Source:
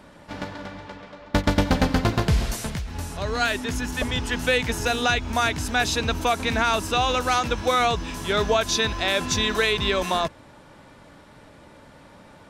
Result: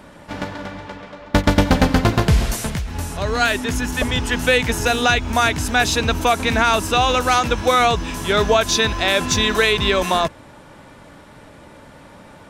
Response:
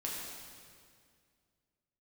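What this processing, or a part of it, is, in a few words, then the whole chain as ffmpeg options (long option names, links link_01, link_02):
exciter from parts: -filter_complex "[0:a]asplit=2[link_01][link_02];[link_02]highpass=frequency=4100:width=0.5412,highpass=frequency=4100:width=1.3066,asoftclip=type=tanh:threshold=-29dB,volume=-11.5dB[link_03];[link_01][link_03]amix=inputs=2:normalize=0,volume=5.5dB"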